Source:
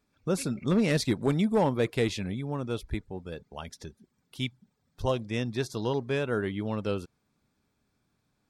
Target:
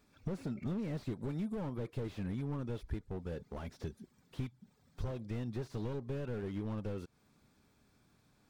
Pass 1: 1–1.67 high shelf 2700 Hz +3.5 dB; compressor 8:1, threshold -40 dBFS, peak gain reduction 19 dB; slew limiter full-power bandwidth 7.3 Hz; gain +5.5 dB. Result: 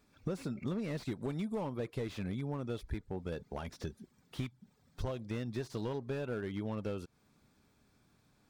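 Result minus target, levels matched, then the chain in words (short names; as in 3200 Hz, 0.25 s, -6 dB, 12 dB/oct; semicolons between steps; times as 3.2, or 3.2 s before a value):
slew limiter: distortion -9 dB
1–1.67 high shelf 2700 Hz +3.5 dB; compressor 8:1, threshold -40 dBFS, peak gain reduction 19 dB; slew limiter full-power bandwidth 3 Hz; gain +5.5 dB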